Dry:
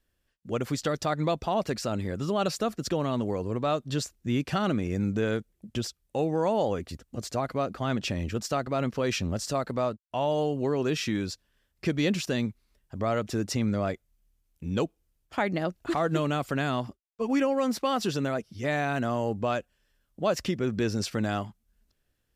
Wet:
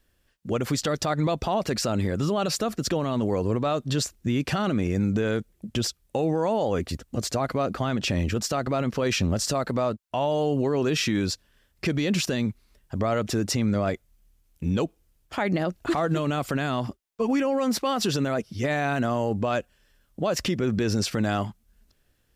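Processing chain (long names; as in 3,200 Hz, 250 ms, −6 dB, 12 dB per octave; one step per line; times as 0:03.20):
brickwall limiter −24.5 dBFS, peak gain reduction 10 dB
level +8 dB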